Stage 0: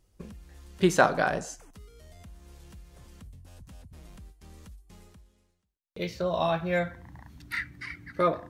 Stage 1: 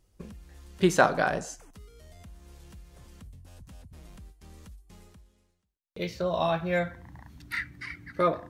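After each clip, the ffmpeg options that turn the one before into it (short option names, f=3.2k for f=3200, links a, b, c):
-af anull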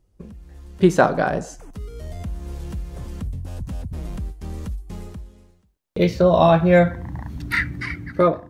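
-af "tiltshelf=f=970:g=5,dynaudnorm=f=170:g=5:m=15dB,volume=-1dB"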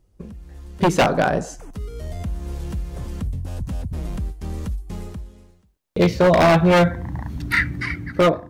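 -af "aeval=exprs='0.282*(abs(mod(val(0)/0.282+3,4)-2)-1)':c=same,volume=2.5dB"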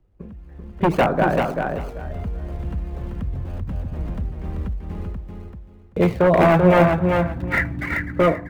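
-filter_complex "[0:a]acrossover=split=250|750|2900[a][b][c][d];[d]acrusher=samples=33:mix=1:aa=0.000001:lfo=1:lforange=19.8:lforate=3.9[e];[a][b][c][e]amix=inputs=4:normalize=0,aecho=1:1:387|774|1161:0.596|0.125|0.0263,volume=-1dB"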